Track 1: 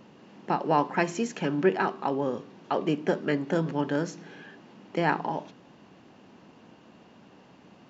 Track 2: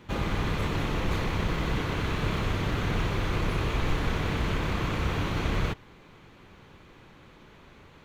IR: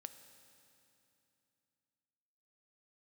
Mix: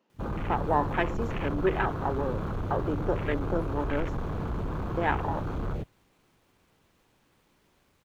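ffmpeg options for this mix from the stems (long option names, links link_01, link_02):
-filter_complex "[0:a]highpass=300,volume=-1.5dB[link_01];[1:a]highshelf=frequency=8700:gain=8.5,acrusher=bits=8:mix=0:aa=0.000001,asoftclip=type=tanh:threshold=-25.5dB,adelay=100,volume=-2dB,asplit=2[link_02][link_03];[link_03]volume=-6.5dB[link_04];[2:a]atrim=start_sample=2205[link_05];[link_04][link_05]afir=irnorm=-1:irlink=0[link_06];[link_01][link_02][link_06]amix=inputs=3:normalize=0,afwtdn=0.0224"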